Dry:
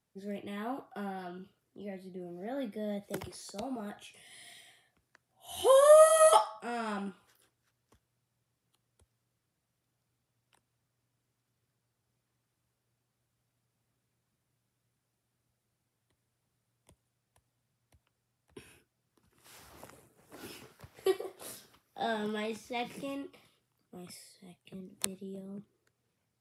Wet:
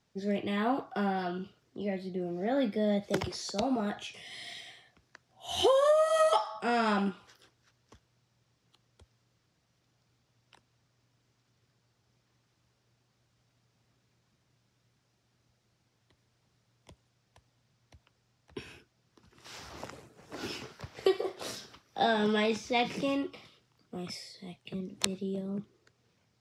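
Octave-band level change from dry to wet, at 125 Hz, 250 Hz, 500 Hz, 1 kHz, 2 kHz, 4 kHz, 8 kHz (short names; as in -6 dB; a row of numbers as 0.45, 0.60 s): n/a, +8.0 dB, -1.5 dB, +0.5 dB, +5.0 dB, +6.5 dB, -5.0 dB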